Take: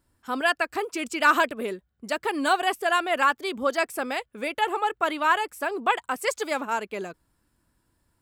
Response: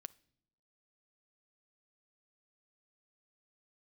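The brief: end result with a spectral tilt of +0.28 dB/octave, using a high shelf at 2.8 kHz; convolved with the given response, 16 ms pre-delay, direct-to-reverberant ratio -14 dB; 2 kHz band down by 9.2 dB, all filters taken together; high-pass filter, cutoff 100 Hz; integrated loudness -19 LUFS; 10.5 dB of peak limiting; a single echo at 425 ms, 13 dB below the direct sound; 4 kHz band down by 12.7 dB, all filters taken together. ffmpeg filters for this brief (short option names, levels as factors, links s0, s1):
-filter_complex "[0:a]highpass=100,equalizer=f=2000:t=o:g=-9,highshelf=f=2800:g=-6.5,equalizer=f=4000:t=o:g=-8.5,alimiter=limit=0.0708:level=0:latency=1,aecho=1:1:425:0.224,asplit=2[s0][s1];[1:a]atrim=start_sample=2205,adelay=16[s2];[s1][s2]afir=irnorm=-1:irlink=0,volume=10[s3];[s0][s3]amix=inputs=2:normalize=0,volume=0.944"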